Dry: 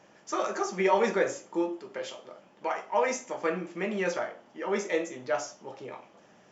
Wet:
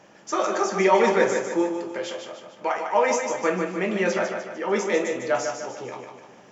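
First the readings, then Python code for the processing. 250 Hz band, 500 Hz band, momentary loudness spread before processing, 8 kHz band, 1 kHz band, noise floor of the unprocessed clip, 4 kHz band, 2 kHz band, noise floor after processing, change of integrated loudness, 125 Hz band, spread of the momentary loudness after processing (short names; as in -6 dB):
+6.5 dB, +6.5 dB, 16 LU, n/a, +6.5 dB, -59 dBFS, +6.5 dB, +6.5 dB, -51 dBFS, +6.5 dB, +6.5 dB, 15 LU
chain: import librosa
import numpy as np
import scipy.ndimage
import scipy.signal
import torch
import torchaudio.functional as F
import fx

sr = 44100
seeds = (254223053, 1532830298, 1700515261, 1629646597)

y = fx.echo_feedback(x, sr, ms=150, feedback_pct=47, wet_db=-6)
y = y * librosa.db_to_amplitude(5.5)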